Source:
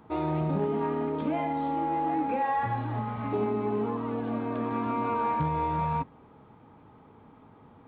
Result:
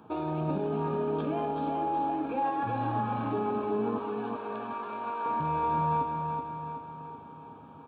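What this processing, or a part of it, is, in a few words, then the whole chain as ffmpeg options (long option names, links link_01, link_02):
PA system with an anti-feedback notch: -filter_complex "[0:a]highpass=150,asuperstop=centerf=2000:order=4:qfactor=4.5,alimiter=level_in=2dB:limit=-24dB:level=0:latency=1:release=44,volume=-2dB,equalizer=frequency=79:width=1.5:gain=5,asettb=1/sr,asplit=3[link_01][link_02][link_03];[link_01]atrim=end=3.984[link_04];[link_02]atrim=start=3.98:end=5.26,asetpts=PTS-STARTPTS,afade=type=in:duration=0.004:curve=qsin,afade=type=out:start_time=1.276:duration=0.004:curve=qsin,highpass=710[link_05];[link_03]atrim=start=5.256[link_06];[link_04][link_05]acrossfade=duration=0.004:curve1=hsin:curve2=qsin[link_07];[link_07][link_06]acrossfade=duration=0.004:curve1=qsin:curve2=hsin,aecho=1:1:376|752|1128|1504|1880|2256|2632:0.562|0.304|0.164|0.0885|0.0478|0.0258|0.0139,volume=1.5dB"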